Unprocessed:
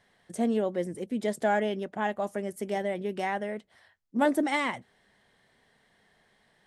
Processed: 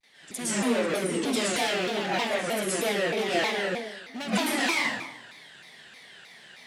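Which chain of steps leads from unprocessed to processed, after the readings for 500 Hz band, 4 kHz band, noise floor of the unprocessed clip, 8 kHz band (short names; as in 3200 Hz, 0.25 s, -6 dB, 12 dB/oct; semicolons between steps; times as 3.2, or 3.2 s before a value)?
+1.5 dB, +13.5 dB, -67 dBFS, +15.0 dB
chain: HPF 53 Hz 24 dB/oct; hard clip -30 dBFS, distortion -6 dB; weighting filter D; compressor, threshold -33 dBFS, peak gain reduction 9 dB; pre-echo 65 ms -17 dB; gate with hold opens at -52 dBFS; high shelf 8700 Hz +6 dB; plate-style reverb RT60 1 s, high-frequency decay 0.75×, pre-delay 0.105 s, DRR -10 dB; shaped vibrato saw down 3.2 Hz, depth 250 cents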